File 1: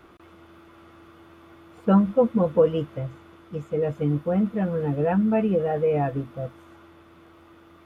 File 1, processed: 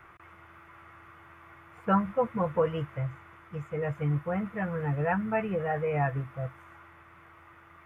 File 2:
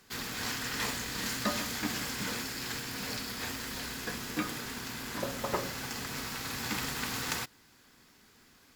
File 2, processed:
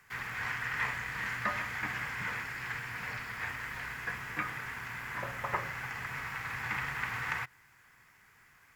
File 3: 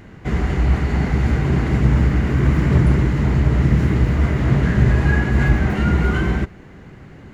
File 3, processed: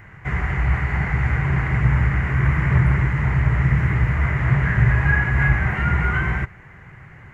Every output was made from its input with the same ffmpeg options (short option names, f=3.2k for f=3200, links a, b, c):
-filter_complex "[0:a]acrossover=split=4300[a][b];[b]acompressor=threshold=-50dB:ratio=4:attack=1:release=60[c];[a][c]amix=inputs=2:normalize=0,equalizer=f=125:t=o:w=1:g=7,equalizer=f=250:t=o:w=1:g=-11,equalizer=f=500:t=o:w=1:g=-3,equalizer=f=1k:t=o:w=1:g=5,equalizer=f=2k:t=o:w=1:g=12,equalizer=f=4k:t=o:w=1:g=-10,volume=-4.5dB"